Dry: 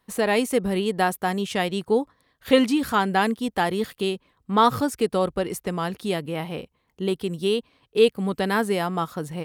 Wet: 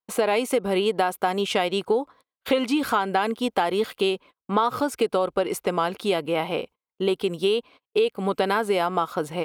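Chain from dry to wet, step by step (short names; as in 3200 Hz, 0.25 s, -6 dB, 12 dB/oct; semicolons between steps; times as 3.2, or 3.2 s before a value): gate -46 dBFS, range -34 dB; tone controls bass -15 dB, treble -8 dB; notch 1800 Hz, Q 5.5; in parallel at -1.5 dB: limiter -17.5 dBFS, peak gain reduction 10.5 dB; on the sum: compressor 6:1, threshold -22 dBFS, peak gain reduction 10.5 dB; gain +3.5 dB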